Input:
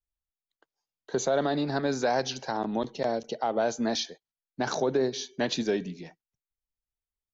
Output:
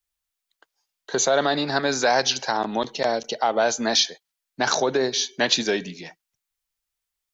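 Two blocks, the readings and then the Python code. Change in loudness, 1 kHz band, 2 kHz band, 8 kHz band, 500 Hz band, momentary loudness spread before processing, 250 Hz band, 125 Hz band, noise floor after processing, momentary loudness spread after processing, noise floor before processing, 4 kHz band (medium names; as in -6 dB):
+7.0 dB, +7.0 dB, +10.5 dB, no reading, +4.5 dB, 8 LU, +1.5 dB, 0.0 dB, -84 dBFS, 7 LU, under -85 dBFS, +12.0 dB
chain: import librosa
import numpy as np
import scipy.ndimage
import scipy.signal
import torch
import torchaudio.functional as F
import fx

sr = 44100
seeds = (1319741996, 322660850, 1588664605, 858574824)

y = fx.tilt_shelf(x, sr, db=-6.5, hz=660.0)
y = F.gain(torch.from_numpy(y), 6.0).numpy()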